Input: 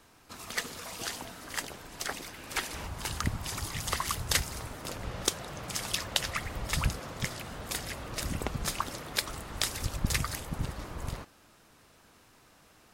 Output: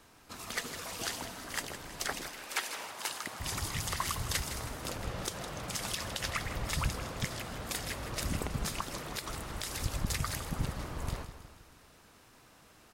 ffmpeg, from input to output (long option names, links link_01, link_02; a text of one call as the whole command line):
ffmpeg -i in.wav -filter_complex "[0:a]asettb=1/sr,asplit=3[link_01][link_02][link_03];[link_01]atrim=end=2.274[link_04];[link_02]atrim=start=2.27:end=3.4,asetpts=PTS-STARTPTS,afade=type=in:duration=0.004:curve=qsin,afade=type=out:start_time=1.126:duration=0.004:curve=qsin,highpass=460[link_05];[link_03]atrim=start=3.396[link_06];[link_04][link_05]acrossfade=duration=0.004:curve1=hsin:curve2=qsin[link_07];[link_07][link_06]acrossfade=duration=0.004:curve1=qsin:curve2=hsin,alimiter=limit=-19.5dB:level=0:latency=1:release=89,asettb=1/sr,asplit=3[link_08][link_09][link_10];[link_08]atrim=end=8.664[link_11];[link_09]atrim=start=8.66:end=9.86,asetpts=PTS-STARTPTS,afade=type=in:duration=0.004:curve=qsin,afade=type=out:start_time=1.196:duration=0.004:curve=qsin,acompressor=threshold=-32dB:ratio=6[link_12];[link_10]atrim=start=9.856[link_13];[link_11][link_12]acrossfade=duration=0.004:curve1=hsin:curve2=qsin[link_14];[link_14][link_13]acrossfade=duration=0.004:curve1=qsin:curve2=hsin,aecho=1:1:160|320|480|640|800:0.266|0.133|0.0665|0.0333|0.0166" out.wav